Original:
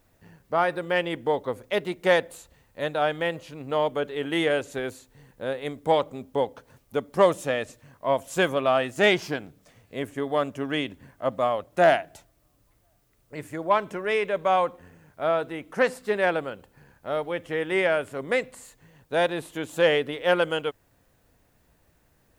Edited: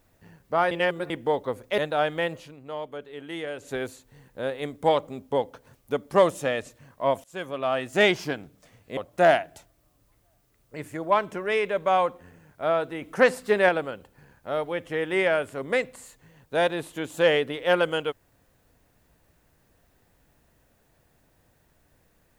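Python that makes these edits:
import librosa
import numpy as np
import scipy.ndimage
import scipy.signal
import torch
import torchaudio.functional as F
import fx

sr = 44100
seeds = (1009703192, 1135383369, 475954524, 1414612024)

y = fx.edit(x, sr, fx.reverse_span(start_s=0.71, length_s=0.39),
    fx.cut(start_s=1.78, length_s=1.03),
    fx.fade_down_up(start_s=3.43, length_s=1.33, db=-10.0, fade_s=0.17),
    fx.fade_in_from(start_s=8.27, length_s=0.76, floor_db=-23.5),
    fx.cut(start_s=10.0, length_s=1.56),
    fx.clip_gain(start_s=15.61, length_s=0.67, db=3.5), tone=tone)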